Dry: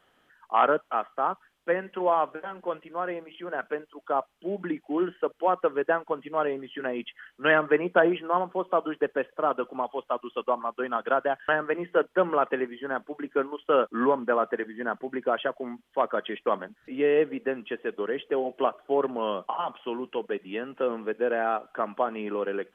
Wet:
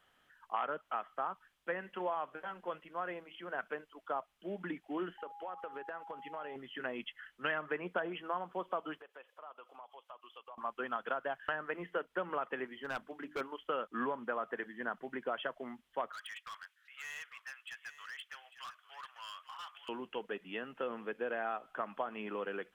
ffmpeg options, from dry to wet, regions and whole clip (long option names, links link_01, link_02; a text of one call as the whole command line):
ffmpeg -i in.wav -filter_complex "[0:a]asettb=1/sr,asplit=3[link_01][link_02][link_03];[link_01]atrim=end=5.184[link_04];[link_02]atrim=start=5.18:end=6.56,asetpts=PTS-STARTPTS,afade=type=in:duration=0.004:curve=qsin,afade=type=out:start_time=1.376:duration=0.004:curve=qsin,lowshelf=frequency=160:gain=-9,acompressor=threshold=-31dB:ratio=10:attack=3.2:release=140:knee=1:detection=peak,aeval=exprs='val(0)+0.00891*sin(2*PI*820*n/s)':channel_layout=same[link_05];[link_03]atrim=start=6.556[link_06];[link_04][link_05]acrossfade=duration=0.004:curve1=hsin:curve2=qsin[link_07];[link_07][link_06]acrossfade=duration=0.004:curve1=qsin:curve2=hsin,asettb=1/sr,asplit=3[link_08][link_09][link_10];[link_08]atrim=end=9.014[link_11];[link_09]atrim=start=9.01:end=10.58,asetpts=PTS-STARTPTS,afade=type=in:duration=0.004:curve=qsin,afade=type=out:start_time=1.566:duration=0.004:curve=qsin,highpass=670,equalizer=frequency=1700:width_type=o:width=0.64:gain=-6.5,acompressor=threshold=-45dB:ratio=3:attack=3.2:release=140:knee=1:detection=peak[link_12];[link_10]atrim=start=10.576[link_13];[link_11][link_12]acrossfade=duration=0.004:curve1=hsin:curve2=qsin[link_14];[link_14][link_13]acrossfade=duration=0.004:curve1=qsin:curve2=hsin,asettb=1/sr,asplit=3[link_15][link_16][link_17];[link_15]atrim=end=12.744[link_18];[link_16]atrim=start=12.74:end=13.41,asetpts=PTS-STARTPTS,afade=type=in:duration=0.004:curve=qsin,afade=type=out:start_time=0.666:duration=0.004:curve=qsin,volume=24.5dB,asoftclip=hard,volume=-24.5dB,bandreject=frequency=50:width_type=h:width=6,bandreject=frequency=100:width_type=h:width=6,bandreject=frequency=150:width_type=h:width=6,bandreject=frequency=200:width_type=h:width=6,bandreject=frequency=250:width_type=h:width=6,bandreject=frequency=300:width_type=h:width=6[link_19];[link_17]atrim=start=13.406[link_20];[link_18][link_19]acrossfade=duration=0.004:curve1=hsin:curve2=qsin[link_21];[link_21][link_20]acrossfade=duration=0.004:curve1=qsin:curve2=hsin,asettb=1/sr,asplit=3[link_22][link_23][link_24];[link_22]atrim=end=16.124[link_25];[link_23]atrim=start=16.12:end=19.89,asetpts=PTS-STARTPTS,afade=type=in:duration=0.004:curve=qsin,afade=type=out:start_time=3.766:duration=0.004:curve=qsin,highpass=frequency=1300:width=0.5412,highpass=frequency=1300:width=1.3066,asoftclip=type=hard:threshold=-37.5dB,aecho=1:1:848:0.211,atrim=end_sample=166257[link_26];[link_24]atrim=start=19.886[link_27];[link_25][link_26]acrossfade=duration=0.004:curve1=hsin:curve2=qsin[link_28];[link_28][link_27]acrossfade=duration=0.004:curve1=qsin:curve2=hsin,equalizer=frequency=360:width=0.62:gain=-7.5,acompressor=threshold=-29dB:ratio=5,volume=-3.5dB" out.wav